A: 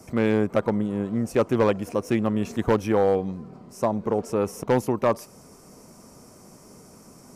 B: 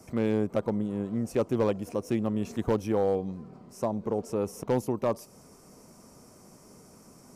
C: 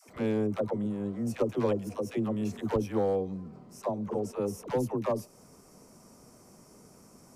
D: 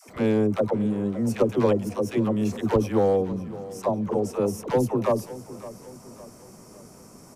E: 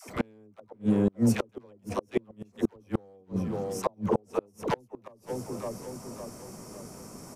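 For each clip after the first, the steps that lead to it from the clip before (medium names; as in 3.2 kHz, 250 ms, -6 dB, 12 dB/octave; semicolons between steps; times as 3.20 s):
dynamic bell 1.7 kHz, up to -7 dB, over -40 dBFS, Q 0.84; trim -4.5 dB
phase dispersion lows, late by 82 ms, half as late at 430 Hz; trim -2 dB
feedback delay 561 ms, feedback 46%, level -16.5 dB; trim +7 dB
inverted gate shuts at -16 dBFS, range -36 dB; trim +3 dB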